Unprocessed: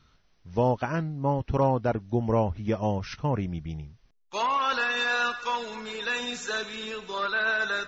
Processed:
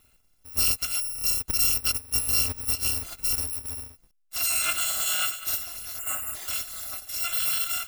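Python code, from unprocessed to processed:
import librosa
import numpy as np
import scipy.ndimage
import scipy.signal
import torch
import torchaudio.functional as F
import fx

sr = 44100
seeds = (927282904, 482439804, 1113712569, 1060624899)

y = fx.bit_reversed(x, sr, seeds[0], block=256)
y = fx.spec_box(y, sr, start_s=5.99, length_s=0.36, low_hz=3000.0, high_hz=6900.0, gain_db=-18)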